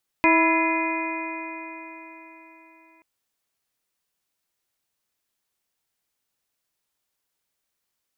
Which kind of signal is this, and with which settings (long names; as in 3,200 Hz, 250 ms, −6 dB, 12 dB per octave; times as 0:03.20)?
stiff-string partials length 2.78 s, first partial 323 Hz, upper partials −5.5/0.5/−15/−11/−3/−1 dB, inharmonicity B 0.0037, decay 4.10 s, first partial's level −19 dB